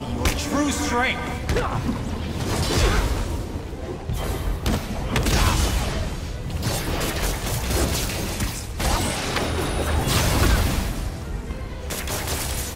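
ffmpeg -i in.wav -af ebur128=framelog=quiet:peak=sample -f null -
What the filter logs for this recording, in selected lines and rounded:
Integrated loudness:
  I:         -24.3 LUFS
  Threshold: -34.3 LUFS
Loudness range:
  LRA:         2.2 LU
  Threshold: -44.2 LUFS
  LRA low:   -25.3 LUFS
  LRA high:  -23.0 LUFS
Sample peak:
  Peak:       -6.6 dBFS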